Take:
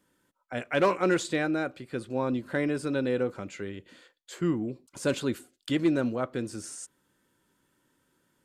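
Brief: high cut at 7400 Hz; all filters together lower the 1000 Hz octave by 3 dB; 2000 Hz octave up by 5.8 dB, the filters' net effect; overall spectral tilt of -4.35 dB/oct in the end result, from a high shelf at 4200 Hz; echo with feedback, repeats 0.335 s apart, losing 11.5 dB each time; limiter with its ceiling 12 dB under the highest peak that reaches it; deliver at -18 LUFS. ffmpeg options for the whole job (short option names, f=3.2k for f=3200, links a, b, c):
-af "lowpass=7.4k,equalizer=f=1k:t=o:g=-8,equalizer=f=2k:t=o:g=9,highshelf=f=4.2k:g=7.5,alimiter=limit=-20.5dB:level=0:latency=1,aecho=1:1:335|670|1005:0.266|0.0718|0.0194,volume=14.5dB"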